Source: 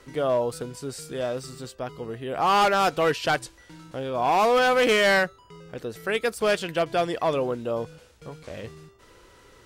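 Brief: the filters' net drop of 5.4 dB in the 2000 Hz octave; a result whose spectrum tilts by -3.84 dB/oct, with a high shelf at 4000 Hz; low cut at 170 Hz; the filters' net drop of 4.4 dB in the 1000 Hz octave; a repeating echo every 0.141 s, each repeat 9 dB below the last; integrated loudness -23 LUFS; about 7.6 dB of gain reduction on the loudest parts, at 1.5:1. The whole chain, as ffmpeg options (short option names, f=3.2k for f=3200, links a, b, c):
-af "highpass=170,equalizer=f=1k:t=o:g=-5,equalizer=f=2k:t=o:g=-7.5,highshelf=f=4k:g=9,acompressor=threshold=-41dB:ratio=1.5,aecho=1:1:141|282|423|564:0.355|0.124|0.0435|0.0152,volume=10dB"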